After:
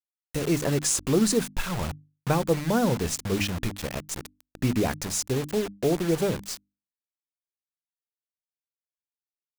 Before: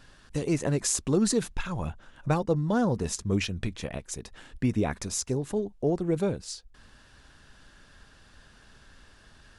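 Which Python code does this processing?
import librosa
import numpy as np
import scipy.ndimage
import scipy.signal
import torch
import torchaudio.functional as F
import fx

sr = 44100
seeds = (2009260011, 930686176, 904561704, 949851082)

y = fx.quant_dither(x, sr, seeds[0], bits=6, dither='none')
y = fx.hum_notches(y, sr, base_hz=50, count=6)
y = y * librosa.db_to_amplitude(2.5)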